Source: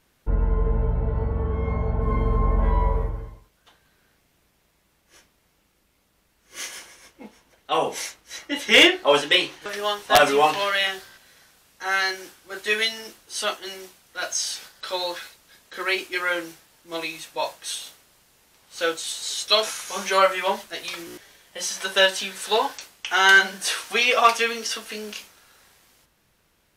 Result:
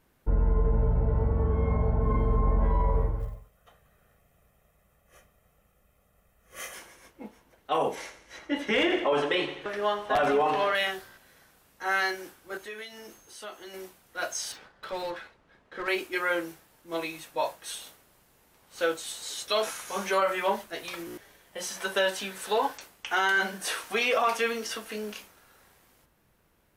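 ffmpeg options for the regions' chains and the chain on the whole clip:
-filter_complex "[0:a]asettb=1/sr,asplit=3[a][b][c];[a]atrim=end=3.204[d];[b]atrim=start=3.2:end=6.74,asetpts=PTS-STARTPTS,afade=t=in:d=0.004:c=qsin,afade=t=out:st=3.536:d=0.004:c=qsin,equalizer=f=4.5k:w=2.1:g=-8,aecho=1:1:1.6:0.67,atrim=end_sample=156114,acrusher=bits=7:mode=log:mix=0:aa=0.000001[e];[c]atrim=start=6.736[f];[d][e]acrossfade=d=0.004:c1=hsin:c2=qsin[g];[g][f]acrossfade=d=0.004:c1=qsin:c2=hsin,asettb=1/sr,asplit=3[h][i][j];[h]atrim=end=7.954[k];[i]atrim=start=7.95:end=10.75,asetpts=PTS-STARTPTS,afade=t=in:d=0.004:c=qsin,afade=t=out:st=2.796:d=0.004:c=qsin,aemphasis=mode=reproduction:type=50fm,aecho=1:1:83|166|249|332|415:0.237|0.121|0.0617|0.0315|0.016,atrim=end_sample=123480[l];[j]atrim=start=10.746[m];[k][l]acrossfade=d=0.004:c1=hsin:c2=qsin[n];[n][m]acrossfade=d=0.004:c1=qsin:c2=hsin,asettb=1/sr,asplit=3[o][p][q];[o]atrim=end=12.574[r];[p]atrim=start=12.57:end=13.74,asetpts=PTS-STARTPTS,afade=t=in:d=0.004:c=qsin,afade=t=out:st=1.166:d=0.004:c=qsin,aeval=exprs='val(0)+0.00316*sin(2*PI*6400*n/s)':c=same,acompressor=threshold=-40dB:ratio=2.5:attack=3.2:release=140:knee=1:detection=peak[s];[q]atrim=start=13.736[t];[r][s]acrossfade=d=0.004:c1=hsin:c2=qsin[u];[u][t]acrossfade=d=0.004:c1=qsin:c2=hsin,asettb=1/sr,asplit=3[v][w][x];[v]atrim=end=14.524[y];[w]atrim=start=14.52:end=15.88,asetpts=PTS-STARTPTS,afade=t=in:d=0.004:c=qsin,afade=t=out:st=1.356:d=0.004:c=qsin,volume=28dB,asoftclip=hard,volume=-28dB,adynamicsmooth=sensitivity=4:basefreq=2.7k[z];[x]atrim=start=15.876[aa];[y][z]acrossfade=d=0.004:c1=hsin:c2=qsin[ab];[ab][aa]acrossfade=d=0.004:c1=qsin:c2=hsin,equalizer=f=4.9k:w=0.46:g=-9,alimiter=limit=-16.5dB:level=0:latency=1:release=29"

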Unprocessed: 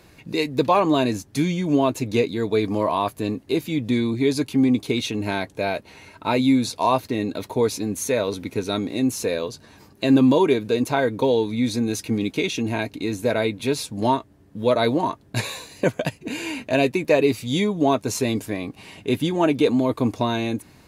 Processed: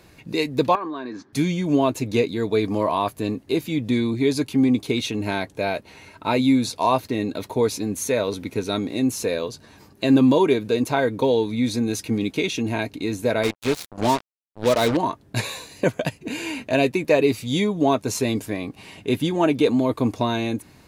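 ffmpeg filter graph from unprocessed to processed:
-filter_complex "[0:a]asettb=1/sr,asplit=3[a][b][c];[a]atrim=end=0.754[d];[b]atrim=start=0.75:end=1.33,asetpts=PTS-STARTPTS,afade=t=in:d=0.004:c=qsin,afade=t=out:st=0.576:d=0.004:c=qsin,acompressor=threshold=-28dB:ratio=16:attack=3.2:release=140:knee=1:detection=peak,highpass=240,equalizer=f=250:t=q:w=4:g=4,equalizer=f=360:t=q:w=4:g=6,equalizer=f=600:t=q:w=4:g=-4,equalizer=f=1.1k:t=q:w=4:g=9,equalizer=f=1.6k:t=q:w=4:g=9,equalizer=f=2.8k:t=q:w=4:g=-8,lowpass=f=4.5k:w=0.5412,lowpass=f=4.5k:w=1.3066[e];[c]atrim=start=1.326[f];[d][e]acrossfade=d=0.004:c1=hsin:c2=qsin[g];[g][f]acrossfade=d=0.004:c1=qsin:c2=hsin,asettb=1/sr,asplit=3[h][i][j];[h]atrim=end=13.434[k];[i]atrim=start=13.43:end=14.97,asetpts=PTS-STARTPTS,afade=t=in:d=0.004:c=qsin,afade=t=out:st=1.536:d=0.004:c=qsin,lowpass=9.2k,acrusher=bits=3:mix=0:aa=0.5[l];[j]atrim=start=14.966[m];[k][l]acrossfade=d=0.004:c1=hsin:c2=qsin[n];[n][m]acrossfade=d=0.004:c1=qsin:c2=hsin"

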